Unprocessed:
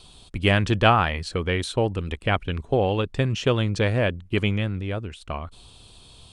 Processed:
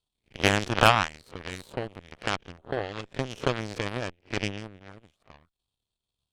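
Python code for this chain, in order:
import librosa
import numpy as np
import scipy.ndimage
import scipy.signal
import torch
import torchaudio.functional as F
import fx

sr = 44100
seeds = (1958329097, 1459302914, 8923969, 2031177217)

y = fx.spec_swells(x, sr, rise_s=0.44)
y = fx.cheby_harmonics(y, sr, harmonics=(4, 7), levels_db=(-21, -17), full_scale_db=-0.5)
y = F.gain(torch.from_numpy(y), -1.0).numpy()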